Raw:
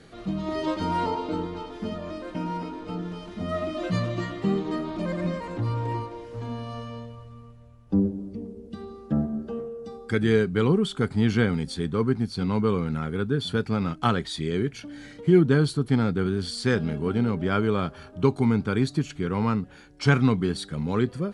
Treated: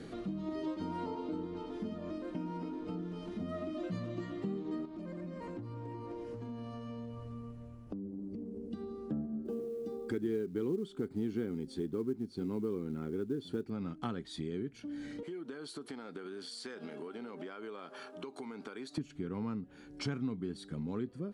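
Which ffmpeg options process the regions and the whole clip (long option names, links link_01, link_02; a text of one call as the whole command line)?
ffmpeg -i in.wav -filter_complex "[0:a]asettb=1/sr,asplit=3[link_01][link_02][link_03];[link_01]atrim=end=4.854[link_04];[link_02]atrim=start=4.85:end=8.73,asetpts=PTS-STARTPTS,afade=type=in:duration=0.004:curve=qsin,afade=type=out:start_time=3.876:duration=0.004:curve=qsin,equalizer=frequency=3600:width_type=o:width=0.25:gain=-4,acompressor=threshold=-38dB:ratio=6:attack=3.2:release=140:knee=1:detection=peak[link_05];[link_03]atrim=start=8.726[link_06];[link_04][link_05]acrossfade=duration=0.004:curve1=hsin:curve2=qsin[link_07];[link_07][link_06]acrossfade=duration=0.004:curve1=qsin:curve2=hsin,asettb=1/sr,asplit=3[link_08][link_09][link_10];[link_08]atrim=end=9.454[link_11];[link_09]atrim=start=9.45:end=13.7,asetpts=PTS-STARTPTS,afade=type=in:duration=0.004:curve=qsin,afade=type=out:start_time=4.246:duration=0.004:curve=qsin,equalizer=frequency=360:width_type=o:width=0.79:gain=10.5,acrusher=bits=7:mode=log:mix=0:aa=0.000001[link_12];[link_10]atrim=start=13.696[link_13];[link_11][link_12]acrossfade=duration=0.004:curve1=hsin:curve2=qsin[link_14];[link_14][link_13]acrossfade=duration=0.004:curve1=qsin:curve2=hsin,asettb=1/sr,asplit=3[link_15][link_16][link_17];[link_15]atrim=end=15.234[link_18];[link_16]atrim=start=15.23:end=18.98,asetpts=PTS-STARTPTS,afade=type=in:duration=0.004:curve=qsin,afade=type=out:start_time=3.746:duration=0.004:curve=qsin,highpass=590,acompressor=threshold=-40dB:ratio=6:attack=3.2:release=140:knee=1:detection=peak[link_19];[link_17]atrim=start=18.976[link_20];[link_18][link_19]acrossfade=duration=0.004:curve1=hsin:curve2=qsin[link_21];[link_21][link_20]acrossfade=duration=0.004:curve1=qsin:curve2=hsin,equalizer=frequency=280:width=0.95:gain=10,acompressor=threshold=-40dB:ratio=3,volume=-1.5dB" out.wav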